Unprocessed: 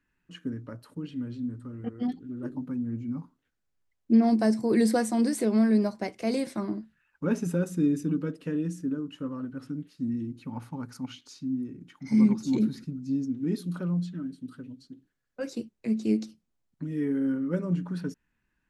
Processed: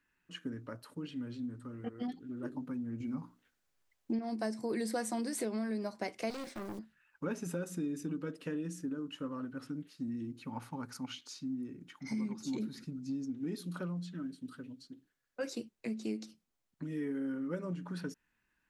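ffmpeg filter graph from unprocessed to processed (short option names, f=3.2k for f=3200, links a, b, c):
-filter_complex "[0:a]asettb=1/sr,asplit=3[a][b][c];[a]atrim=end=3.004[d];[b]atrim=start=3:end=4.19,asetpts=PTS-STARTPTS,afade=t=in:d=0.004:c=qsin,afade=t=out:st=1.186:d=0.004:c=qsin,bandreject=f=60:t=h:w=6,bandreject=f=120:t=h:w=6,bandreject=f=180:t=h:w=6,bandreject=f=240:t=h:w=6,bandreject=f=300:t=h:w=6,acontrast=39[e];[c]atrim=start=4.186[f];[d][e]acrossfade=d=0.004:c1=hsin:c2=qsin[g];[g][f]acrossfade=d=0.004:c1=qsin:c2=hsin,asettb=1/sr,asplit=3[h][i][j];[h]atrim=end=6.304[k];[i]atrim=start=6.3:end=6.79,asetpts=PTS-STARTPTS,afade=t=in:d=0.004:c=qsin,afade=t=out:st=0.486:d=0.004:c=qsin,lowpass=7.1k,acrusher=bits=5:mode=log:mix=0:aa=0.000001,aeval=exprs='(tanh(50.1*val(0)+0.7)-tanh(0.7))/50.1':c=same[l];[j]atrim=start=6.786[m];[k][l]acrossfade=d=0.004:c1=hsin:c2=qsin[n];[n][m]acrossfade=d=0.004:c1=qsin:c2=hsin,acompressor=threshold=-30dB:ratio=4,lowshelf=f=330:g=-9.5,volume=1dB"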